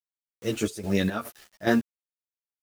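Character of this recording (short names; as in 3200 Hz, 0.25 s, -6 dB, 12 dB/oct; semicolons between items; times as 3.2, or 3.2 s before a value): a quantiser's noise floor 8-bit, dither none; chopped level 2.4 Hz, depth 65%, duty 60%; a shimmering, thickened sound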